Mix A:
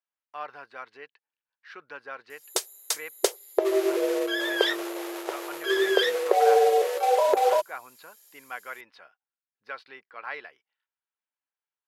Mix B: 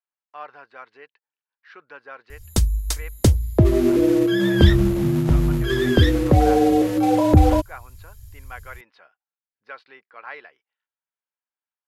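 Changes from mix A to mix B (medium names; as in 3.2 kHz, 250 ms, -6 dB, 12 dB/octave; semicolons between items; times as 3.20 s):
speech: add low-pass 3.5 kHz 6 dB/octave; background: remove brick-wall FIR high-pass 360 Hz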